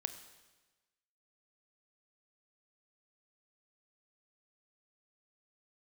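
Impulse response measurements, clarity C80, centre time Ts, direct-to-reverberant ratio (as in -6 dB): 12.5 dB, 13 ms, 9.0 dB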